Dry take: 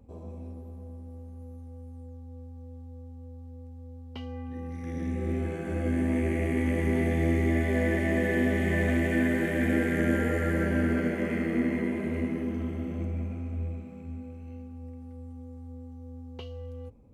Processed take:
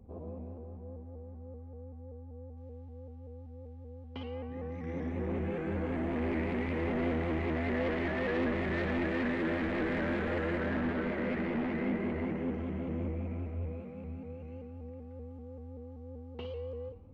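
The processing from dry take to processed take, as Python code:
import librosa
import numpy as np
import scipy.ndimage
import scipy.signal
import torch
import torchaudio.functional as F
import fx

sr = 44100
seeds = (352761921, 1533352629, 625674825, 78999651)

y = fx.rev_schroeder(x, sr, rt60_s=0.75, comb_ms=30, drr_db=9.5)
y = 10.0 ** (-29.5 / 20.0) * np.tanh(y / 10.0 ** (-29.5 / 20.0))
y = fx.lowpass(y, sr, hz=fx.steps((0.0, 1500.0), (2.57, 3000.0)), slope=12)
y = fx.room_flutter(y, sr, wall_m=9.7, rt60_s=0.48)
y = fx.vibrato_shape(y, sr, shape='saw_up', rate_hz=5.2, depth_cents=100.0)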